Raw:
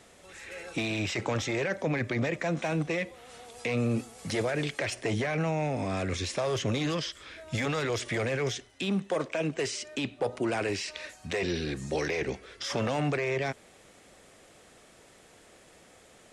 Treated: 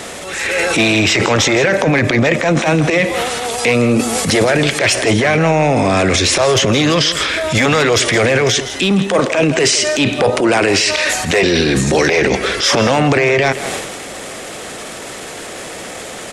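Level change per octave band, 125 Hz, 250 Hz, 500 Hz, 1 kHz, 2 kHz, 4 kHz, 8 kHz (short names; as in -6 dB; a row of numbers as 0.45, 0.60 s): +15.0, +16.5, +17.5, +18.5, +19.0, +21.0, +22.5 dB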